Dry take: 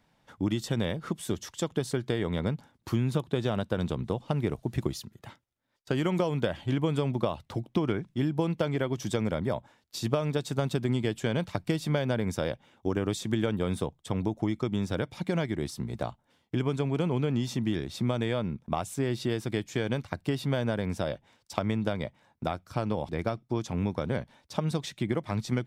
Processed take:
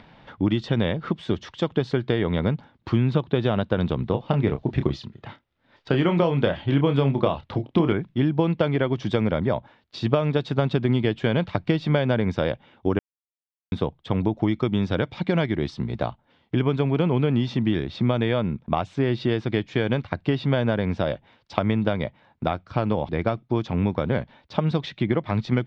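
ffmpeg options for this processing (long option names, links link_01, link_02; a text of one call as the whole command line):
ffmpeg -i in.wav -filter_complex "[0:a]asettb=1/sr,asplit=3[link_01][link_02][link_03];[link_01]atrim=end=4.104[link_04];[link_02]atrim=start=4.1:end=7.93,asetpts=PTS-STARTPTS,afade=type=in:duration=0.004:curve=qsin,afade=type=out:start_time=3.826:duration=0.004:curve=qsin,asplit=2[link_05][link_06];[link_06]adelay=29,volume=-8dB[link_07];[link_05][link_07]amix=inputs=2:normalize=0,atrim=end_sample=168903[link_08];[link_03]atrim=start=7.926[link_09];[link_04][link_08]acrossfade=duration=0.004:curve1=hsin:curve2=qsin[link_10];[link_10][link_09]acrossfade=duration=0.004:curve1=qsin:curve2=hsin,asettb=1/sr,asplit=3[link_11][link_12][link_13];[link_11]atrim=end=14.344[link_14];[link_12]atrim=start=14.34:end=16.07,asetpts=PTS-STARTPTS,afade=type=in:duration=0.004:curve=qsin,afade=type=out:start_time=1.726:duration=0.004:curve=qsin,highshelf=frequency=4300:gain=5[link_15];[link_13]atrim=start=16.066[link_16];[link_14][link_15]acrossfade=duration=0.004:curve1=hsin:curve2=qsin[link_17];[link_17][link_16]acrossfade=duration=0.004:curve1=qsin:curve2=hsin,asplit=3[link_18][link_19][link_20];[link_18]atrim=end=12.99,asetpts=PTS-STARTPTS,afade=type=out:start_time=12.986:duration=0.004:curve=hsin[link_21];[link_19]atrim=start=12.99:end=13.72,asetpts=PTS-STARTPTS,volume=0[link_22];[link_20]atrim=start=13.72,asetpts=PTS-STARTPTS,afade=type=in:duration=0.004:curve=hsin[link_23];[link_21][link_22][link_23]concat=n=3:v=0:a=1,lowpass=frequency=3900:width=0.5412,lowpass=frequency=3900:width=1.3066,acompressor=mode=upward:threshold=-46dB:ratio=2.5,volume=6.5dB" out.wav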